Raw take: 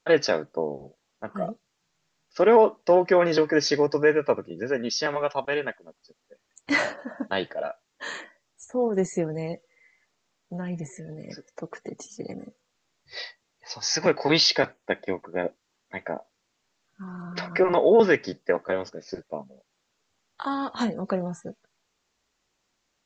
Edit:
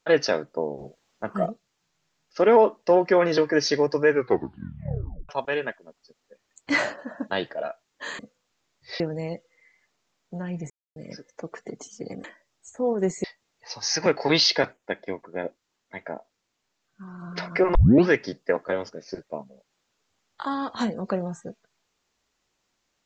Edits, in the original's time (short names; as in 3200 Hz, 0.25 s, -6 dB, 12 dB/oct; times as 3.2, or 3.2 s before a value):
0.78–1.46 gain +4.5 dB
4.09 tape stop 1.20 s
8.19–9.19 swap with 12.43–13.24
10.89–11.15 mute
14.77–17.22 gain -3 dB
17.75 tape start 0.33 s